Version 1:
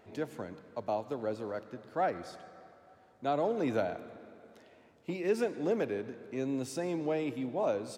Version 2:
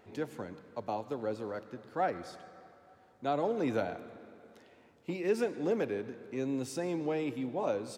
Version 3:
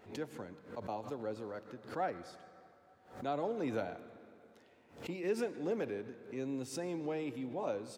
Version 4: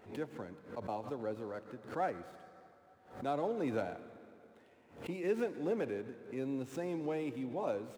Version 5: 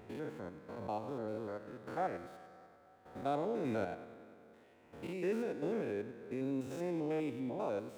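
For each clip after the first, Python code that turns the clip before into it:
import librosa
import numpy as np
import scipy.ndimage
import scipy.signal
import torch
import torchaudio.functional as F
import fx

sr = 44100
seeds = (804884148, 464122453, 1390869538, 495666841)

y1 = fx.notch(x, sr, hz=640.0, q=12.0)
y2 = fx.pre_swell(y1, sr, db_per_s=130.0)
y2 = F.gain(torch.from_numpy(y2), -5.0).numpy()
y3 = scipy.signal.medfilt(y2, 9)
y3 = F.gain(torch.from_numpy(y3), 1.0).numpy()
y4 = fx.spec_steps(y3, sr, hold_ms=100)
y4 = F.gain(torch.from_numpy(y4), 1.5).numpy()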